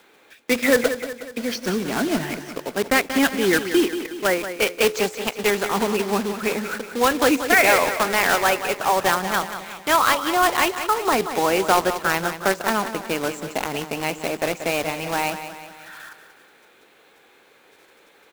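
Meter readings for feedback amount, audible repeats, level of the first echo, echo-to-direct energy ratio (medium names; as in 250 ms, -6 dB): 52%, 5, -10.5 dB, -9.0 dB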